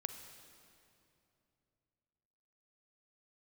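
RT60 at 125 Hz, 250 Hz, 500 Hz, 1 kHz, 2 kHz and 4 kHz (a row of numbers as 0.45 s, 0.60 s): 3.7 s, 3.2 s, 3.0 s, 2.6 s, 2.3 s, 2.2 s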